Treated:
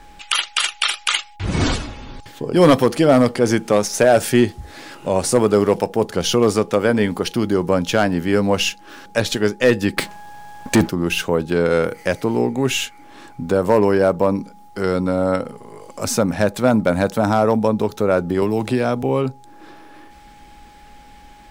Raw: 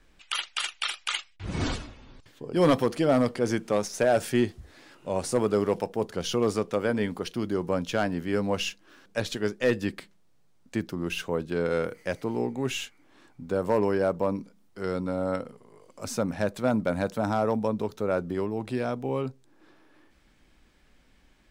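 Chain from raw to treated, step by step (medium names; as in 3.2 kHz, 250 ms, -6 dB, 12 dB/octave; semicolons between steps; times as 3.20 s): treble shelf 8.1 kHz +4 dB; in parallel at +1.5 dB: compression, threshold -38 dBFS, peak gain reduction 19 dB; on the sum: whistle 830 Hz -53 dBFS; 9.97–10.89 s: waveshaping leveller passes 3; 18.42–19.03 s: three bands compressed up and down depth 70%; trim +8 dB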